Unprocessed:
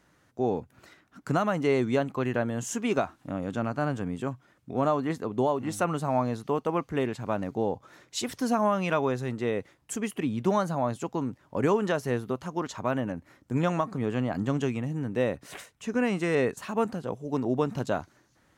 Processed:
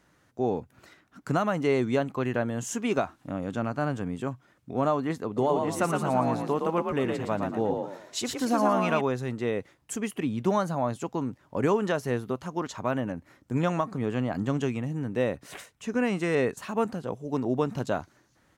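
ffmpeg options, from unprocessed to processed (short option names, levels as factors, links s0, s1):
-filter_complex "[0:a]asplit=3[s0][s1][s2];[s0]afade=t=out:st=5.36:d=0.02[s3];[s1]asplit=5[s4][s5][s6][s7][s8];[s5]adelay=115,afreqshift=43,volume=0.631[s9];[s6]adelay=230,afreqshift=86,volume=0.221[s10];[s7]adelay=345,afreqshift=129,volume=0.0776[s11];[s8]adelay=460,afreqshift=172,volume=0.0269[s12];[s4][s9][s10][s11][s12]amix=inputs=5:normalize=0,afade=t=in:st=5.36:d=0.02,afade=t=out:st=9:d=0.02[s13];[s2]afade=t=in:st=9:d=0.02[s14];[s3][s13][s14]amix=inputs=3:normalize=0"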